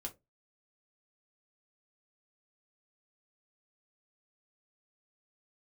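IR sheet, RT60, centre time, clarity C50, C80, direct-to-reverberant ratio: 0.20 s, 8 ms, 18.5 dB, 27.0 dB, 1.5 dB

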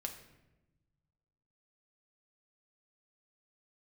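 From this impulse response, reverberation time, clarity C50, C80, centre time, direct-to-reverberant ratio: 1.0 s, 9.0 dB, 11.0 dB, 18 ms, 3.0 dB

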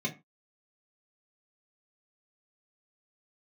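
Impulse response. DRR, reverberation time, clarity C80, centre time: -4.0 dB, 0.25 s, 21.5 dB, 11 ms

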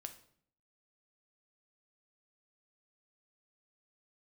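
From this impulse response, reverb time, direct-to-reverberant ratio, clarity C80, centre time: 0.60 s, 7.0 dB, 15.5 dB, 9 ms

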